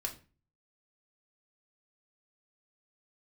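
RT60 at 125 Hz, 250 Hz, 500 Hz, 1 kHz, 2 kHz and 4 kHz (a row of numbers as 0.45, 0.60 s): 0.65, 0.50, 0.35, 0.35, 0.35, 0.30 s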